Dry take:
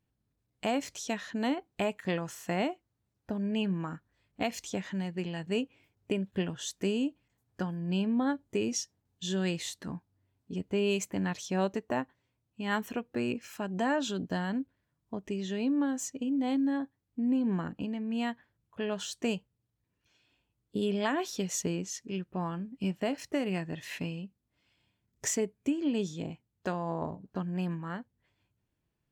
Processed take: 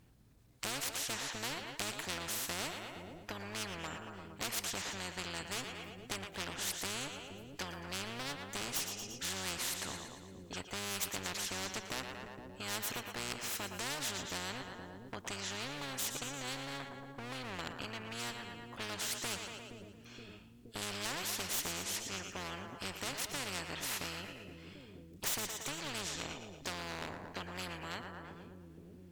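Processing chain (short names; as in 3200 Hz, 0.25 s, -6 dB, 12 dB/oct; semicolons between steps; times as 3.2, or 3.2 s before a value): one-sided clip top -32 dBFS, bottom -23 dBFS; harmoniser -12 st -8 dB; on a send: split-band echo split 370 Hz, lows 0.471 s, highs 0.115 s, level -16 dB; on the sum: spectral compressor 4:1; gain -1 dB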